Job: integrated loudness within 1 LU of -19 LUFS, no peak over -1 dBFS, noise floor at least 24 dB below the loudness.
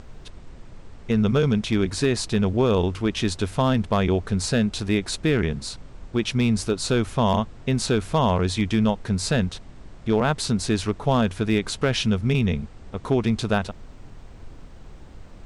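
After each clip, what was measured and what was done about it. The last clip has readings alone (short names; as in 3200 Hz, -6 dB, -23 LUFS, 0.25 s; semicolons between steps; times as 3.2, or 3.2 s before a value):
clipped 0.5%; flat tops at -12.0 dBFS; noise floor -44 dBFS; noise floor target -47 dBFS; loudness -23.0 LUFS; peak -12.0 dBFS; loudness target -19.0 LUFS
-> clip repair -12 dBFS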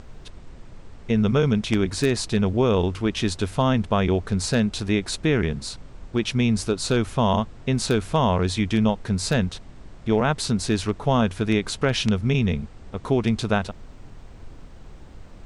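clipped 0.0%; noise floor -44 dBFS; noise floor target -47 dBFS
-> noise print and reduce 6 dB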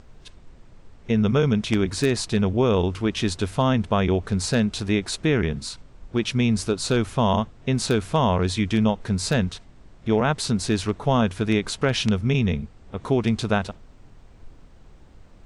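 noise floor -50 dBFS; loudness -23.0 LUFS; peak -4.0 dBFS; loudness target -19.0 LUFS
-> gain +4 dB; limiter -1 dBFS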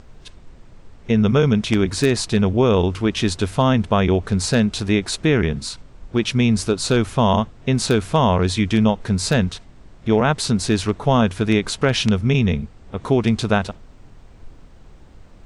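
loudness -19.0 LUFS; peak -1.0 dBFS; noise floor -46 dBFS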